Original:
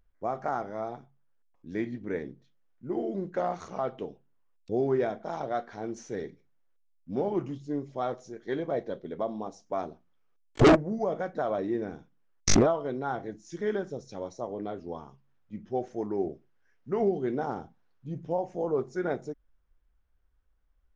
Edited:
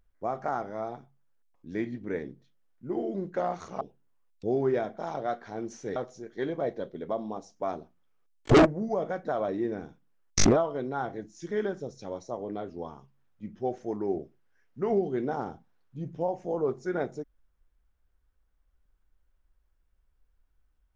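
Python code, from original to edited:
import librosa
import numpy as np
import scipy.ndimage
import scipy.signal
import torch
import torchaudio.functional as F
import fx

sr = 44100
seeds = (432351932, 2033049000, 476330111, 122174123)

y = fx.edit(x, sr, fx.cut(start_s=3.81, length_s=0.26),
    fx.cut(start_s=6.22, length_s=1.84), tone=tone)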